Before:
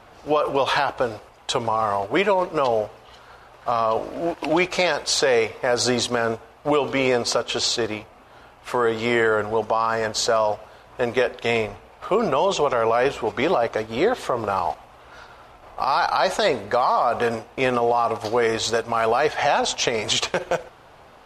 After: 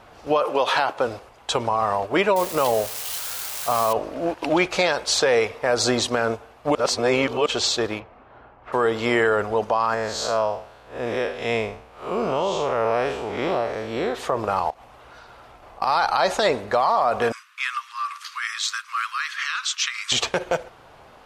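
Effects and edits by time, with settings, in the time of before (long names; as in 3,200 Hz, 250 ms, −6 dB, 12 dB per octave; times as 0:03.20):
0:00.43–0:01.06: high-pass filter 300 Hz → 140 Hz
0:02.36–0:03.93: spike at every zero crossing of −19 dBFS
0:06.75–0:07.46: reverse
0:07.99–0:08.72: low-pass filter 2,700 Hz → 1,300 Hz
0:09.94–0:14.15: spectrum smeared in time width 135 ms
0:14.70–0:15.82: downward compressor 4 to 1, threshold −41 dBFS
0:17.32–0:20.12: Butterworth high-pass 1,100 Hz 96 dB per octave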